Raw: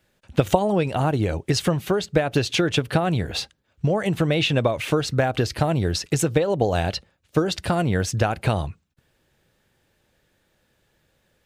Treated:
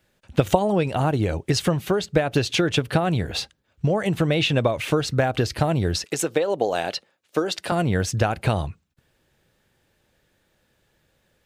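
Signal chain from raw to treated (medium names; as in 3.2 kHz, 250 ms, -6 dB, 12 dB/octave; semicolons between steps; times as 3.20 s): 6.04–7.72 s: high-pass 310 Hz 12 dB/octave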